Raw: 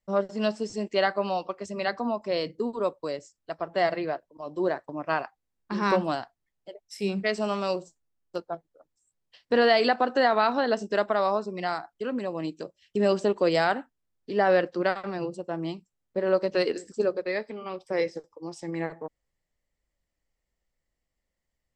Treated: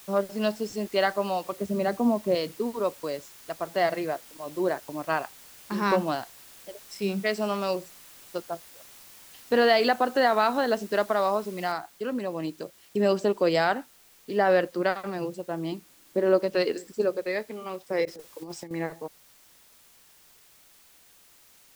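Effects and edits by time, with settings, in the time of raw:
0:01.52–0:02.35: tilt shelving filter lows +9.5 dB, about 840 Hz
0:11.72: noise floor change −50 dB −57 dB
0:15.72–0:16.41: hollow resonant body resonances 300 Hz, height 10 dB, ringing for 30 ms
0:18.05–0:18.71: compressor whose output falls as the input rises −38 dBFS, ratio −0.5

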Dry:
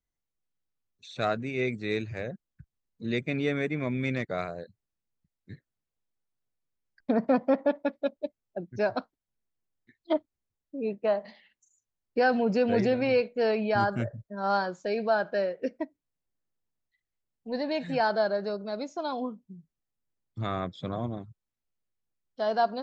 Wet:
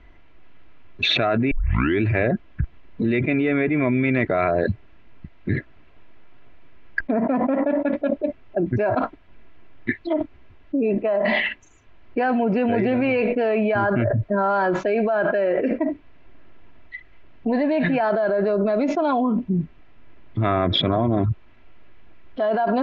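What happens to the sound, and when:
0:01.51: tape start 0.50 s
whole clip: Chebyshev low-pass filter 2,600 Hz, order 3; comb filter 3 ms, depth 44%; envelope flattener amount 100%; level −1.5 dB

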